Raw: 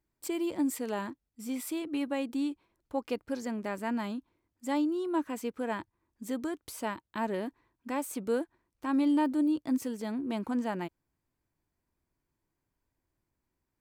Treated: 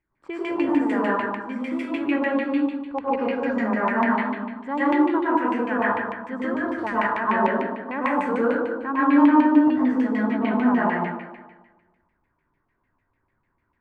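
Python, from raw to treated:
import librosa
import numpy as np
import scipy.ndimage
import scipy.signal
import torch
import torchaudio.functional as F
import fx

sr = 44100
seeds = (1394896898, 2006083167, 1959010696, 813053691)

y = fx.rev_plate(x, sr, seeds[0], rt60_s=1.3, hf_ratio=1.0, predelay_ms=90, drr_db=-9.5)
y = fx.filter_lfo_lowpass(y, sr, shape='saw_down', hz=6.7, low_hz=980.0, high_hz=2400.0, q=3.5)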